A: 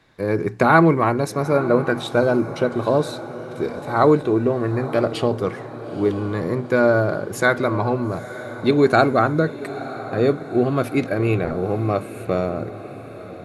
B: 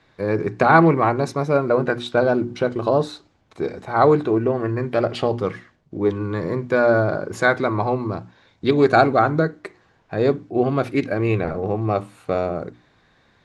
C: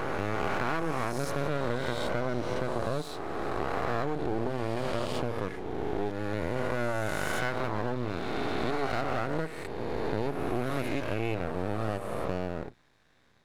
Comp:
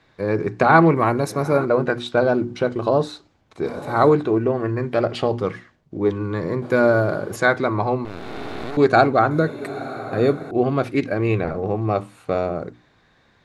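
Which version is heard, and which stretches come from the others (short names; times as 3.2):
B
0.96–1.65 from A
3.66–4.09 from A
6.62–7.36 from A
8.05–8.77 from C
9.31–10.51 from A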